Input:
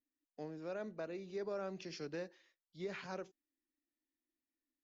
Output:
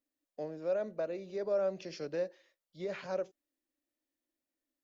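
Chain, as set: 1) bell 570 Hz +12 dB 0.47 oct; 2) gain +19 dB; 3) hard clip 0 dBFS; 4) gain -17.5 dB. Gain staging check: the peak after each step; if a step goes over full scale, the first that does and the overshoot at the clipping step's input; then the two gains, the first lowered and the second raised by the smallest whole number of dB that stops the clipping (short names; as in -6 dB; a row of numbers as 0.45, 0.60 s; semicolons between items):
-24.5, -5.5, -5.5, -23.0 dBFS; no overload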